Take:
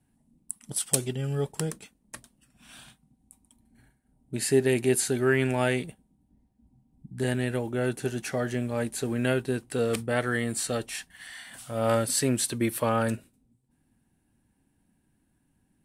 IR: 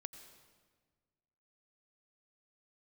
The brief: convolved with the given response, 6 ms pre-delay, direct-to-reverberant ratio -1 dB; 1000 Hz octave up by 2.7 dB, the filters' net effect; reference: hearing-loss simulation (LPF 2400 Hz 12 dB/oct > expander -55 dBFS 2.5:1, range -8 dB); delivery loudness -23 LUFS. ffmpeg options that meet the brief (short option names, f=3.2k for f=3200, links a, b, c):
-filter_complex "[0:a]equalizer=f=1k:t=o:g=4,asplit=2[a][b];[1:a]atrim=start_sample=2205,adelay=6[c];[b][c]afir=irnorm=-1:irlink=0,volume=5.5dB[d];[a][d]amix=inputs=2:normalize=0,lowpass=2.4k,agate=range=-8dB:threshold=-55dB:ratio=2.5,volume=3dB"